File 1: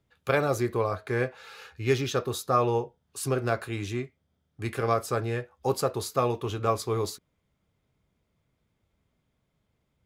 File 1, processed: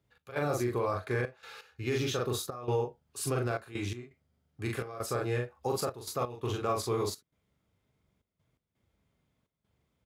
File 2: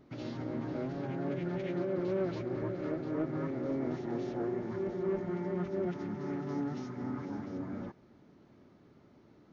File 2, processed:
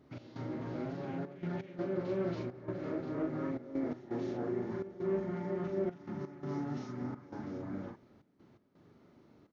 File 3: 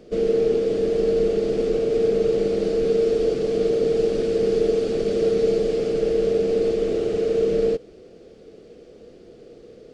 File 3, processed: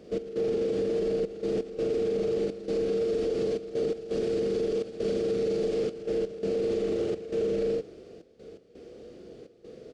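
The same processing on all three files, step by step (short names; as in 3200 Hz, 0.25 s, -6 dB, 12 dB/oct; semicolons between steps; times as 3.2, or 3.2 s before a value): HPF 44 Hz; doubler 41 ms -2.5 dB; limiter -18 dBFS; step gate "x.xxxxx.x.xxx" 84 bpm -12 dB; gain -3 dB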